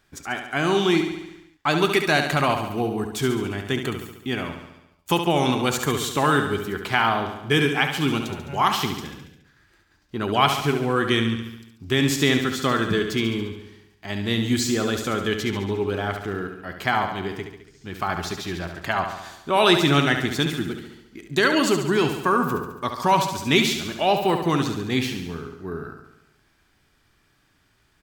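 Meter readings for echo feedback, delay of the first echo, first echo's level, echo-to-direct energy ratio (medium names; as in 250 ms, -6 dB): 60%, 70 ms, -7.5 dB, -5.5 dB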